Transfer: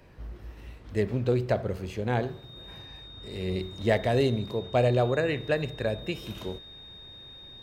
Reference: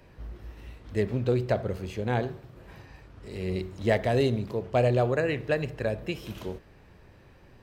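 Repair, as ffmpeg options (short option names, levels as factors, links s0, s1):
-af "bandreject=f=3700:w=30"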